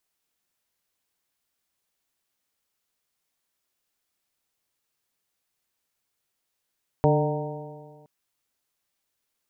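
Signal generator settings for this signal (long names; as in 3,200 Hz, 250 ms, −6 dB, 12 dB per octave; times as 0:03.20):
stiff-string partials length 1.02 s, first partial 147 Hz, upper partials −5.5/−1.5/−2.5/−6/−8 dB, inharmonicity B 0.0029, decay 1.71 s, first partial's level −19 dB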